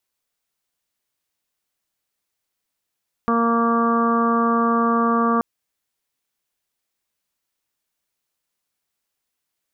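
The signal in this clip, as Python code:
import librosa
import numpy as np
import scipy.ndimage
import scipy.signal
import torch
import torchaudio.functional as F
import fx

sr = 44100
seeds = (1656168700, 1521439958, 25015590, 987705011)

y = fx.additive_steady(sr, length_s=2.13, hz=232.0, level_db=-19.5, upper_db=(-4.5, -8.0, -9.5, 0, -13, -18))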